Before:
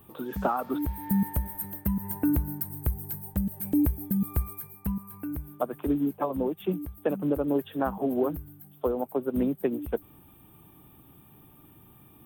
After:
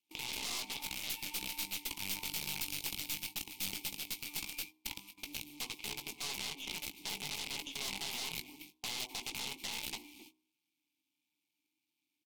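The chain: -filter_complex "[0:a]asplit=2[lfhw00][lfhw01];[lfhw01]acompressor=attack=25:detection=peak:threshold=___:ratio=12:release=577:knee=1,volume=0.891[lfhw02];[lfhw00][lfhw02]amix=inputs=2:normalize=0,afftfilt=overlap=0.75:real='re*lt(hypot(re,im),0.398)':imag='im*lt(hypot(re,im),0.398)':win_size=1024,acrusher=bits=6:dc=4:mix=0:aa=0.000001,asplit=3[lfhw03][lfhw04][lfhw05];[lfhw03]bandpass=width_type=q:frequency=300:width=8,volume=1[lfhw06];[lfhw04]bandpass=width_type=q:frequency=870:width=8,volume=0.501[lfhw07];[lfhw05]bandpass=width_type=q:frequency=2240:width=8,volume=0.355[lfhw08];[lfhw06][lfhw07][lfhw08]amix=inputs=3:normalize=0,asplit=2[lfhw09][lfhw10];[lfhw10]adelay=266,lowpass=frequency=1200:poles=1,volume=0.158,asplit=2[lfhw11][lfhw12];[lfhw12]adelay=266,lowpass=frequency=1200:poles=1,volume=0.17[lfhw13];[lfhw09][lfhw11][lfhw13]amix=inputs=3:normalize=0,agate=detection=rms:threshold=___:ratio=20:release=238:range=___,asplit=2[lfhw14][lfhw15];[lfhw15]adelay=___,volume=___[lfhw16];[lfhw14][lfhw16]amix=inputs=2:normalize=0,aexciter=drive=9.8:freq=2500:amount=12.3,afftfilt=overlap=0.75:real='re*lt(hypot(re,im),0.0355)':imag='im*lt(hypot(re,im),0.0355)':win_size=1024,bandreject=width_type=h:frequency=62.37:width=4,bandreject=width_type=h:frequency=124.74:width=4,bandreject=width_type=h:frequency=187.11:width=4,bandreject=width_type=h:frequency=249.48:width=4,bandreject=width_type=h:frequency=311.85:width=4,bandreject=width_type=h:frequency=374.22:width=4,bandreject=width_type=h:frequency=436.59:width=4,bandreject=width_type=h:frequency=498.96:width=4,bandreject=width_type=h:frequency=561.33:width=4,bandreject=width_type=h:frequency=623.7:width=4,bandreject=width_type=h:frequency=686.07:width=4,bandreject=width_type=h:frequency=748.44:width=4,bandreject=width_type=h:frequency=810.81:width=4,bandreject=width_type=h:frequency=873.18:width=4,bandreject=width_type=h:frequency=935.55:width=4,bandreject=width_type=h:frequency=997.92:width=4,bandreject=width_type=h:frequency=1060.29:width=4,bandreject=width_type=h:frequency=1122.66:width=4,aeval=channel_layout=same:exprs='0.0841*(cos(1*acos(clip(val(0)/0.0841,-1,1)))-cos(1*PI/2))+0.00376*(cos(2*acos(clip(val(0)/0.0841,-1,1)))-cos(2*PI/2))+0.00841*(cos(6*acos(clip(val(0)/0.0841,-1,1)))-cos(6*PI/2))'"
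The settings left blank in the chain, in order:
0.0141, 0.00158, 0.0316, 19, 0.355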